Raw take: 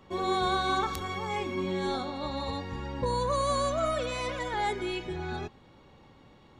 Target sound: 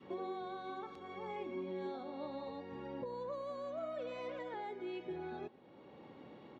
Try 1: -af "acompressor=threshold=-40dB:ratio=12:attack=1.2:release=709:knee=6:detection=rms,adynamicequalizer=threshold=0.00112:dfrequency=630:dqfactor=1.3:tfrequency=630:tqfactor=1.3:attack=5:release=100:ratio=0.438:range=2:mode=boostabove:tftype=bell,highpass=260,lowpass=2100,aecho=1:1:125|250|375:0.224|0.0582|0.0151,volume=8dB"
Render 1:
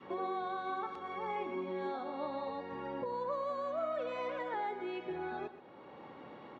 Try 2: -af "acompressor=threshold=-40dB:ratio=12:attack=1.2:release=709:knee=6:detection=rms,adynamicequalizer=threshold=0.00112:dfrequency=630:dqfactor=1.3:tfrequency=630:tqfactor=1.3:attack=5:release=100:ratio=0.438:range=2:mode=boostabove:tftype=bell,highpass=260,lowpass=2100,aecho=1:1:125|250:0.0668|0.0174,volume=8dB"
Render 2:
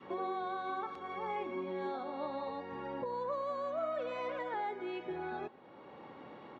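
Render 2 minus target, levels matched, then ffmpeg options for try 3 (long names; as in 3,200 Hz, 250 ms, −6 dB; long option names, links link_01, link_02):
1,000 Hz band +3.0 dB
-af "acompressor=threshold=-40dB:ratio=12:attack=1.2:release=709:knee=6:detection=rms,adynamicequalizer=threshold=0.00112:dfrequency=630:dqfactor=1.3:tfrequency=630:tqfactor=1.3:attack=5:release=100:ratio=0.438:range=2:mode=boostabove:tftype=bell,highpass=260,lowpass=2100,equalizer=frequency=1200:width_type=o:width=2.1:gain=-9.5,aecho=1:1:125|250:0.0668|0.0174,volume=8dB"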